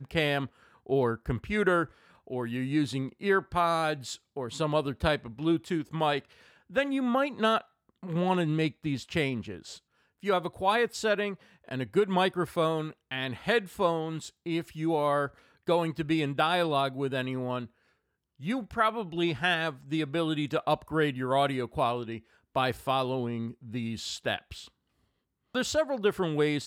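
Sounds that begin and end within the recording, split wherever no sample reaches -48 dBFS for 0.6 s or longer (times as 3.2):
18.4–24.68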